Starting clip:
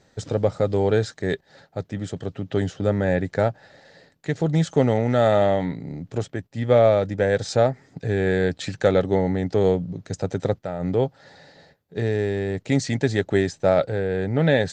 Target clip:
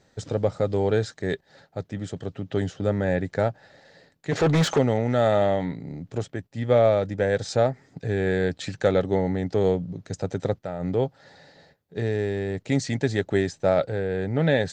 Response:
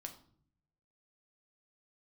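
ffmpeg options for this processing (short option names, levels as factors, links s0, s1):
-filter_complex "[0:a]asplit=3[s0][s1][s2];[s0]afade=t=out:st=4.31:d=0.02[s3];[s1]asplit=2[s4][s5];[s5]highpass=f=720:p=1,volume=25.1,asoftclip=type=tanh:threshold=0.355[s6];[s4][s6]amix=inputs=2:normalize=0,lowpass=f=2500:p=1,volume=0.501,afade=t=in:st=4.31:d=0.02,afade=t=out:st=4.77:d=0.02[s7];[s2]afade=t=in:st=4.77:d=0.02[s8];[s3][s7][s8]amix=inputs=3:normalize=0,volume=0.75"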